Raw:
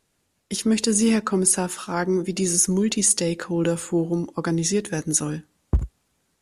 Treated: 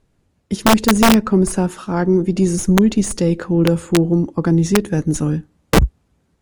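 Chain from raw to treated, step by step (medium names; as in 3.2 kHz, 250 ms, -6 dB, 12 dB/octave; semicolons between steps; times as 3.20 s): Chebyshev shaper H 2 -14 dB, 3 -44 dB, 4 -39 dB, 5 -22 dB, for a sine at -5 dBFS; tilt EQ -3 dB/octave; integer overflow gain 5 dB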